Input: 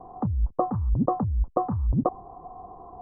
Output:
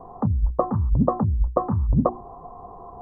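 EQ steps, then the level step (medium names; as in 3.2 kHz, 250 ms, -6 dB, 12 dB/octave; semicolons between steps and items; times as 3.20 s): peaking EQ 320 Hz -7.5 dB 0.23 oct; hum notches 60/120/180/240/300/360 Hz; band-stop 750 Hz, Q 12; +5.5 dB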